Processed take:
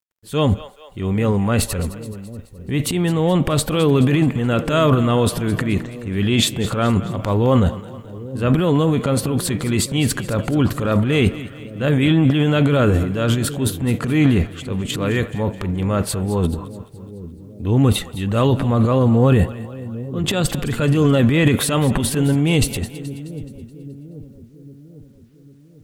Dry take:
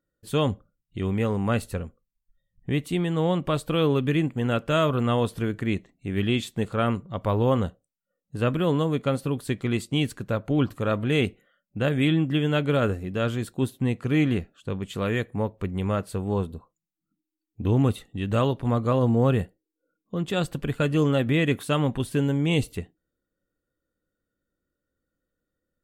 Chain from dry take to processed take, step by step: transient shaper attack -6 dB, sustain +12 dB; split-band echo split 500 Hz, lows 0.799 s, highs 0.213 s, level -15 dB; bit-crush 12-bit; gain +6.5 dB

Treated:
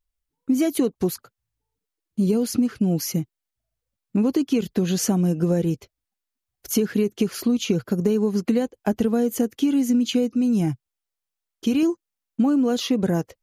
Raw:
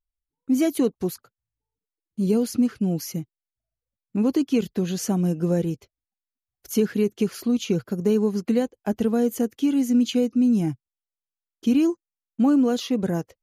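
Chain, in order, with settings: 10.35–11.83 bell 260 Hz -6 dB 0.59 oct; compressor, threshold -23 dBFS, peak gain reduction 8 dB; gain +6 dB

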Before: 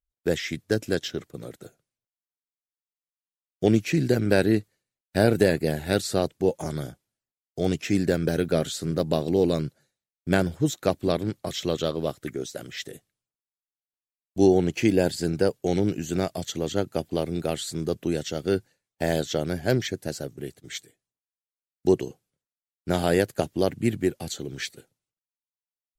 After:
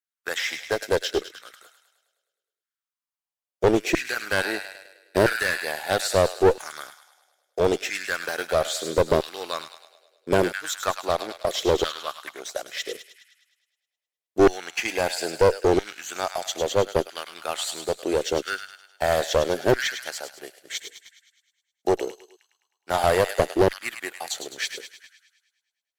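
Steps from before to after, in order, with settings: thin delay 0.104 s, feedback 60%, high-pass 1400 Hz, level -7 dB; LFO high-pass saw down 0.76 Hz 360–1600 Hz; sample leveller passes 1; one-sided clip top -19.5 dBFS

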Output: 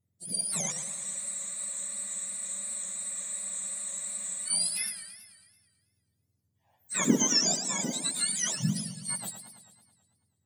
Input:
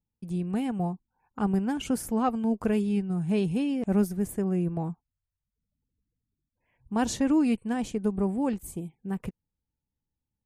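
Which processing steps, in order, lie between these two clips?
spectrum mirrored in octaves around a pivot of 1300 Hz; dynamic EQ 2900 Hz, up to -5 dB, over -47 dBFS, Q 0.85; spectral freeze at 0.75, 3.72 s; warbling echo 0.109 s, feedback 63%, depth 195 cents, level -10 dB; gain +4.5 dB

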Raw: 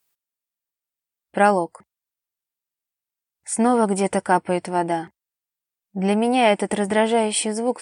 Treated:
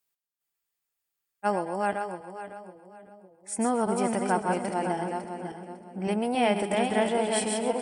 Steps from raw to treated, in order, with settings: regenerating reverse delay 0.276 s, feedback 49%, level -3.5 dB; split-band echo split 590 Hz, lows 0.568 s, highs 0.132 s, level -13.5 dB; spectral freeze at 0.45, 1.00 s; gain -8.5 dB

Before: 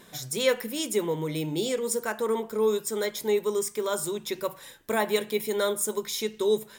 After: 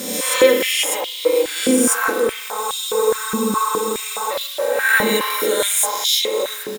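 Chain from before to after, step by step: spectral swells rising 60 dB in 1.21 s; comb 3.8 ms, depth 98%; spring tank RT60 1.5 s, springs 35 ms, chirp 80 ms, DRR 1.5 dB; added noise pink -39 dBFS; high shelf 5100 Hz +7.5 dB; spectral freeze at 2.64, 1.67 s; stepped high-pass 4.8 Hz 230–3400 Hz; gain -1 dB

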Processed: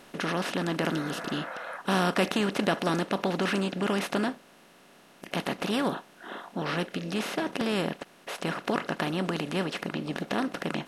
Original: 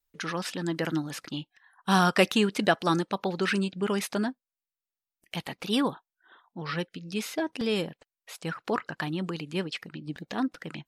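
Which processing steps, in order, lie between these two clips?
per-bin compression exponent 0.4; low shelf 460 Hz +3.5 dB; spectral repair 0.97–1.75, 490–2600 Hz before; gain -8.5 dB

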